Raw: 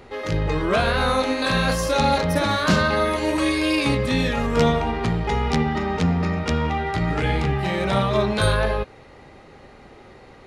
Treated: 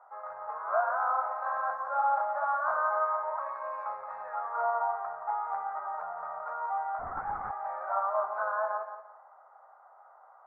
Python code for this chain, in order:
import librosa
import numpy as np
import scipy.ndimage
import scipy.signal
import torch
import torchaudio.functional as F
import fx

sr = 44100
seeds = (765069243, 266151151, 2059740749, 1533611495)

y = scipy.signal.sosfilt(scipy.signal.ellip(3, 1.0, 50, [660.0, 1400.0], 'bandpass', fs=sr, output='sos'), x)
y = fx.echo_feedback(y, sr, ms=174, feedback_pct=28, wet_db=-9)
y = fx.lpc_vocoder(y, sr, seeds[0], excitation='whisper', order=10, at=(6.99, 7.51))
y = y * librosa.db_to_amplitude(-3.5)